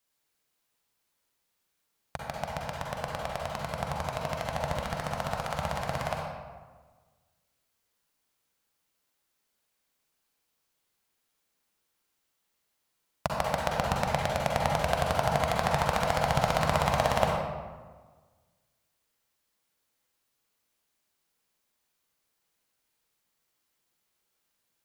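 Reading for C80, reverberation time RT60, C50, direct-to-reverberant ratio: 1.5 dB, 1.4 s, -1.0 dB, -2.0 dB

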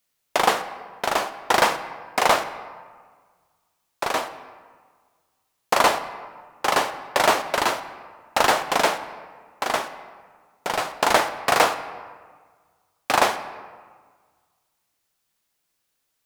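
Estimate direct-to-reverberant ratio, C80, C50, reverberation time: 11.0 dB, 13.5 dB, 12.5 dB, 1.6 s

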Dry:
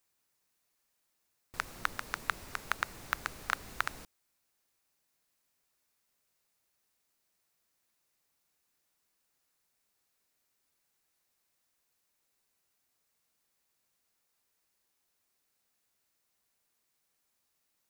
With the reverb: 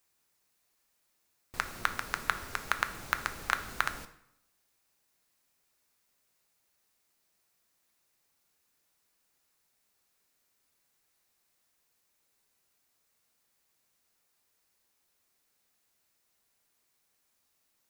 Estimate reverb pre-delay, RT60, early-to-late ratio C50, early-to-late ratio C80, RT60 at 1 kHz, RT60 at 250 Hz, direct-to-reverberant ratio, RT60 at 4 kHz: 5 ms, 0.80 s, 13.5 dB, 16.0 dB, 0.75 s, 0.80 s, 9.0 dB, 0.65 s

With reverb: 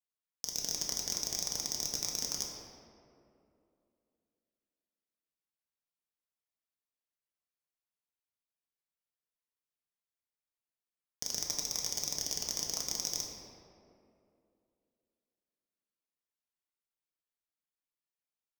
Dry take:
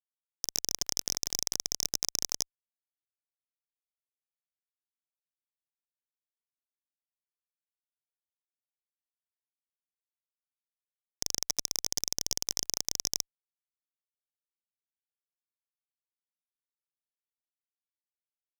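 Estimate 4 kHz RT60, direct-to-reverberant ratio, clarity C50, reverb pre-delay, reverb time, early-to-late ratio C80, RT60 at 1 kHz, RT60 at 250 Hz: 1.3 s, -2.0 dB, 2.0 dB, 4 ms, 2.7 s, 3.0 dB, 2.4 s, 3.1 s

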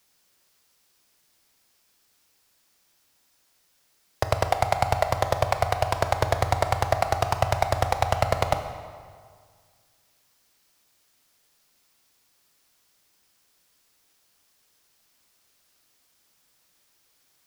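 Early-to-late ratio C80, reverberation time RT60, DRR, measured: 10.0 dB, 1.9 s, 7.0 dB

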